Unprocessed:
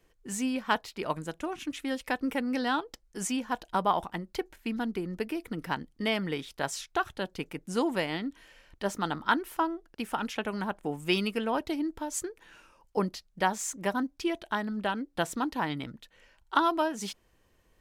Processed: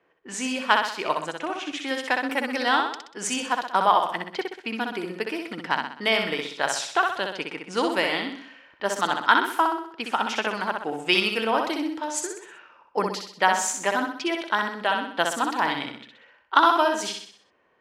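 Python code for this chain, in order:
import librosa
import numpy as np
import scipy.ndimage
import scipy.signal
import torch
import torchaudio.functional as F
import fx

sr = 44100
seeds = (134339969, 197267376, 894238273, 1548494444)

y = fx.env_lowpass(x, sr, base_hz=1700.0, full_db=-28.0)
y = fx.weighting(y, sr, curve='A')
y = fx.echo_feedback(y, sr, ms=63, feedback_pct=47, wet_db=-4.5)
y = y * librosa.db_to_amplitude(7.0)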